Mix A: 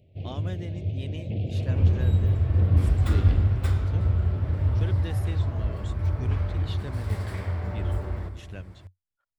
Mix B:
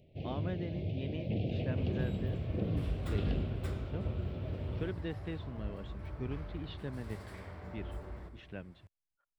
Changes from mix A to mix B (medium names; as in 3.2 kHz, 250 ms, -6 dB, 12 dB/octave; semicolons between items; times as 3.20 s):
speech: add distance through air 330 m; second sound -10.5 dB; master: add peaking EQ 92 Hz -12 dB 0.48 oct